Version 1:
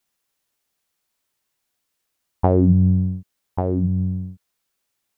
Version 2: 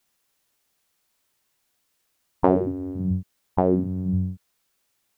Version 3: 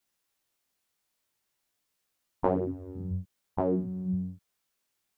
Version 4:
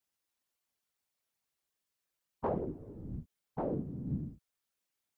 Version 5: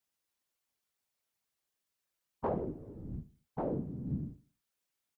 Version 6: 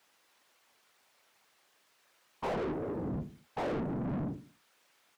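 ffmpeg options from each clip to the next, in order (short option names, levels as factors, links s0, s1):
-af "afftfilt=real='re*lt(hypot(re,im),0.708)':imag='im*lt(hypot(re,im),0.708)':win_size=1024:overlap=0.75,volume=1.58"
-af "flanger=delay=16:depth=8:speed=0.5,volume=0.596"
-af "afftfilt=real='hypot(re,im)*cos(2*PI*random(0))':imag='hypot(re,im)*sin(2*PI*random(1))':win_size=512:overlap=0.75,volume=0.891"
-af "aecho=1:1:76|152|228:0.126|0.0453|0.0163"
-filter_complex "[0:a]asplit=2[s0][s1];[s1]highpass=f=720:p=1,volume=89.1,asoftclip=type=tanh:threshold=0.0944[s2];[s0][s2]amix=inputs=2:normalize=0,lowpass=f=1800:p=1,volume=0.501,volume=0.473"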